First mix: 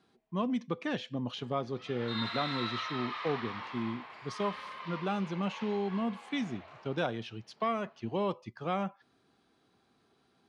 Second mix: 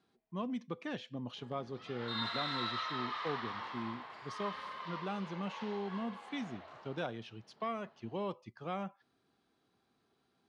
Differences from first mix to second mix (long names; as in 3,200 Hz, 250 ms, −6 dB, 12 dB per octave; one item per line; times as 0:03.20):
speech −6.5 dB
background: add parametric band 2,400 Hz −7 dB 0.38 octaves